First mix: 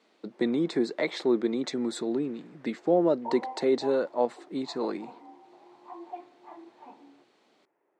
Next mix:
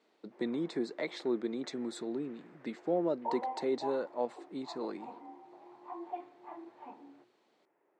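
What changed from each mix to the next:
speech -8.0 dB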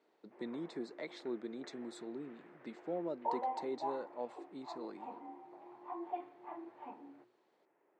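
speech -8.0 dB

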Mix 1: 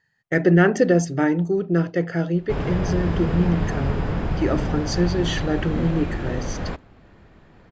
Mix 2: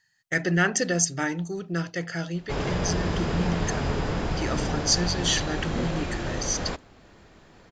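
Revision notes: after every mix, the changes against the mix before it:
speech: add bell 410 Hz -11 dB 1.9 oct; master: add tone controls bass -5 dB, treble +13 dB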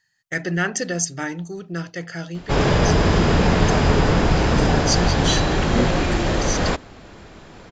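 background +10.5 dB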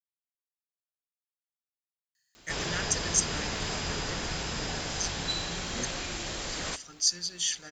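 speech: entry +2.15 s; master: add pre-emphasis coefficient 0.9

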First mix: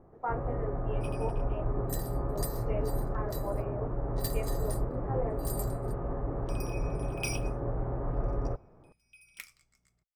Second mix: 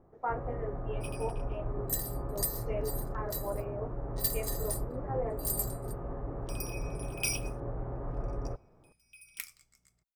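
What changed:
first sound -4.5 dB; master: remove LPF 4000 Hz 6 dB/oct

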